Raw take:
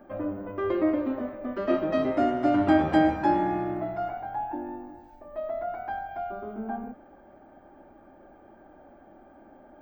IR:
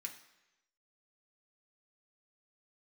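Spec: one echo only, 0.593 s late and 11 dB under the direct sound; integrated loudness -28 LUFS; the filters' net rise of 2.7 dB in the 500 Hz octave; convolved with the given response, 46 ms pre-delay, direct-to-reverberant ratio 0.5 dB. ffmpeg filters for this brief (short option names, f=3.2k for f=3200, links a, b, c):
-filter_complex "[0:a]equalizer=f=500:t=o:g=4,aecho=1:1:593:0.282,asplit=2[a][b];[1:a]atrim=start_sample=2205,adelay=46[c];[b][c]afir=irnorm=-1:irlink=0,volume=2.5dB[d];[a][d]amix=inputs=2:normalize=0,volume=-3.5dB"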